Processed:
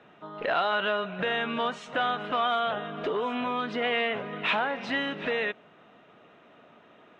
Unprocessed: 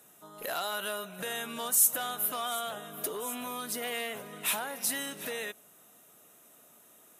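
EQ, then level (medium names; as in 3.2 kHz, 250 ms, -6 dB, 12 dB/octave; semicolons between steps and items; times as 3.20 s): inverse Chebyshev low-pass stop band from 11 kHz, stop band 70 dB; +9.0 dB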